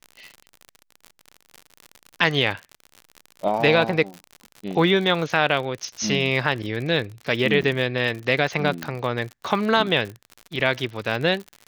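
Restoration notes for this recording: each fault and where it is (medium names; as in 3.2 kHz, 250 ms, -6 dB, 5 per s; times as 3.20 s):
crackle 67 per s -29 dBFS
5.84 s: dropout 2.5 ms
7.62–7.63 s: dropout 6.6 ms
8.83 s: pop -11 dBFS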